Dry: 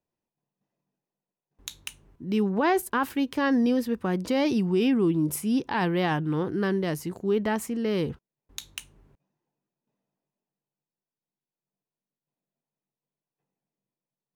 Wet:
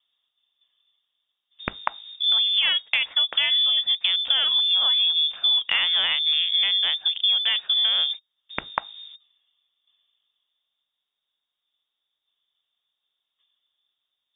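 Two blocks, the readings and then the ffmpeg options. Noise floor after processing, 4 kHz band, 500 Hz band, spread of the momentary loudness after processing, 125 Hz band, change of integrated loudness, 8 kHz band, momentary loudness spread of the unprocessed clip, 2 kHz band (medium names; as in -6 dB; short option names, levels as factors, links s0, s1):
-83 dBFS, +24.0 dB, -18.0 dB, 14 LU, under -20 dB, +6.5 dB, under -30 dB, 18 LU, +5.5 dB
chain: -filter_complex "[0:a]highshelf=f=2100:g=6,asplit=2[s0][s1];[s1]adynamicsmooth=sensitivity=3:basefreq=720,volume=1.26[s2];[s0][s2]amix=inputs=2:normalize=0,lowpass=f=3100:t=q:w=0.5098,lowpass=f=3100:t=q:w=0.6013,lowpass=f=3100:t=q:w=0.9,lowpass=f=3100:t=q:w=2.563,afreqshift=-3700,acompressor=threshold=0.0447:ratio=12,volume=2.66"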